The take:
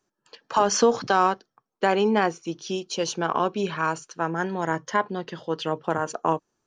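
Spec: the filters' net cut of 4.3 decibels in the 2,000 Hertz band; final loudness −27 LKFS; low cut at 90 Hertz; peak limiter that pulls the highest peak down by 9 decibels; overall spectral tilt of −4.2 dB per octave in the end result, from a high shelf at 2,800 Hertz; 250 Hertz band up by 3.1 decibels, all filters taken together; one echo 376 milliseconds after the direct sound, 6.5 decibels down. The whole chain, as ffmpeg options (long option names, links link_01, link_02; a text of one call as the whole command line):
ffmpeg -i in.wav -af "highpass=90,equalizer=frequency=250:width_type=o:gain=4.5,equalizer=frequency=2000:width_type=o:gain=-7.5,highshelf=frequency=2800:gain=3,alimiter=limit=-15dB:level=0:latency=1,aecho=1:1:376:0.473" out.wav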